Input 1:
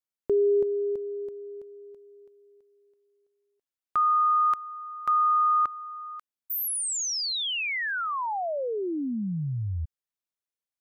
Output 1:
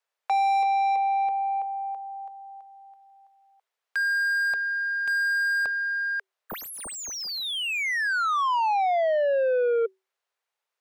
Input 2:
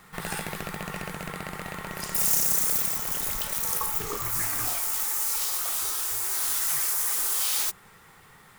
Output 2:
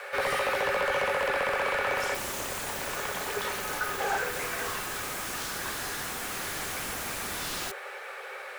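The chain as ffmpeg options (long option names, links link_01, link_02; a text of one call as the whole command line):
ffmpeg -i in.wav -filter_complex "[0:a]afreqshift=380,asplit=2[link_01][link_02];[link_02]highpass=frequency=720:poles=1,volume=32dB,asoftclip=type=tanh:threshold=-7.5dB[link_03];[link_01][link_03]amix=inputs=2:normalize=0,lowpass=frequency=1300:poles=1,volume=-6dB,volume=-7.5dB" out.wav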